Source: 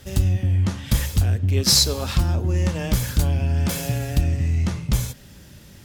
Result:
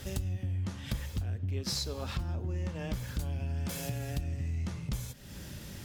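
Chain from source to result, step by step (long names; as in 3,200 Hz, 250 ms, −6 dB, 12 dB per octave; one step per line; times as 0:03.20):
0:00.91–0:03.19: parametric band 12,000 Hz −8 dB 2 octaves
downward compressor 3 to 1, threshold −39 dBFS, peak gain reduction 18.5 dB
level +1.5 dB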